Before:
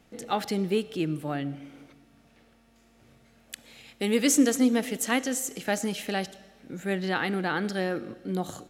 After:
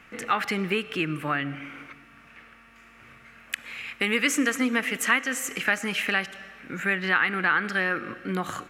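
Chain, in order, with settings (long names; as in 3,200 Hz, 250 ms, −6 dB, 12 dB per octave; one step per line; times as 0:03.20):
flat-topped bell 1,700 Hz +15 dB
downward compressor 2 to 1, threshold −27 dBFS, peak gain reduction 10 dB
level +2 dB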